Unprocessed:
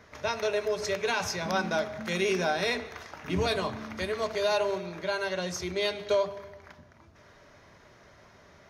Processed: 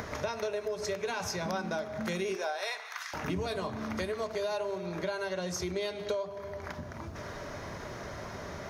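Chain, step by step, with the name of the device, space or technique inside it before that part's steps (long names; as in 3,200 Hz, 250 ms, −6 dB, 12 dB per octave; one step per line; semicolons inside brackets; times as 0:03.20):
0:02.34–0:03.13: high-pass filter 350 Hz → 1,400 Hz 24 dB per octave
parametric band 2,800 Hz −5 dB 1.9 octaves
upward and downward compression (upward compression, threshold −39 dBFS; downward compressor 6 to 1, threshold −39 dBFS, peak gain reduction 15.5 dB)
level +7.5 dB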